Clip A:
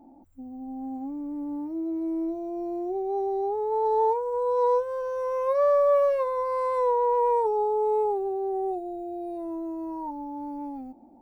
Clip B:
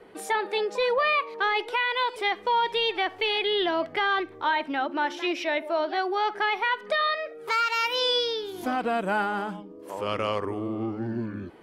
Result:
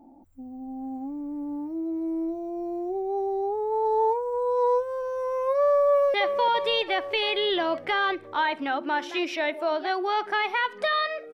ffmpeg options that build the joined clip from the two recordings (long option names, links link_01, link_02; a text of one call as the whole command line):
ffmpeg -i cue0.wav -i cue1.wav -filter_complex "[0:a]apad=whole_dur=11.33,atrim=end=11.33,atrim=end=6.142[link_01];[1:a]atrim=start=2.218:end=7.41[link_02];[link_01][link_02]acrossfade=duration=0.004:curve1=hsin:curve2=hsin,asplit=2[link_03][link_04];[link_04]afade=type=in:start_time=5.86:duration=0.01,afade=type=out:start_time=6.14:duration=0.01,aecho=0:1:340|680|1020|1360|1700|2040|2380|2720|3060:0.473151|0.307548|0.199906|0.129939|0.0844605|0.0548993|0.0356845|0.023195|0.0150767[link_05];[link_03][link_05]amix=inputs=2:normalize=0" out.wav